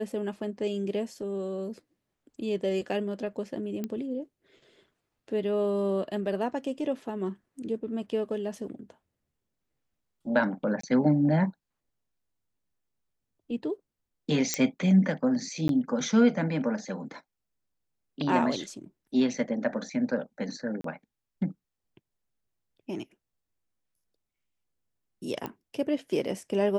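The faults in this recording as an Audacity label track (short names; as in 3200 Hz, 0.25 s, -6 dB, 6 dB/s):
3.840000	3.840000	pop -20 dBFS
10.810000	10.830000	gap 24 ms
14.540000	14.540000	pop -10 dBFS
15.680000	15.690000	gap 12 ms
20.810000	20.840000	gap 33 ms
25.460000	25.460000	pop -20 dBFS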